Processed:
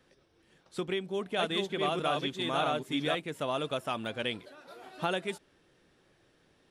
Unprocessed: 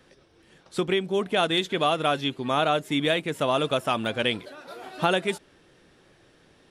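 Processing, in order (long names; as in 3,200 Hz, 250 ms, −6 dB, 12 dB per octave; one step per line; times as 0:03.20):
0:00.78–0:03.15: delay that plays each chunk backwards 610 ms, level −2 dB
level −8.5 dB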